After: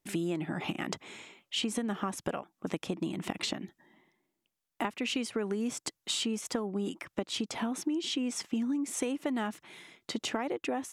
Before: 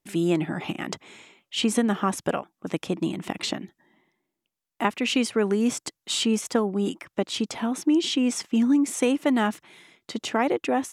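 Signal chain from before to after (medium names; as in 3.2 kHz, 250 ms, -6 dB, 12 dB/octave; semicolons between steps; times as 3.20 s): compression, threshold -30 dBFS, peak gain reduction 12.5 dB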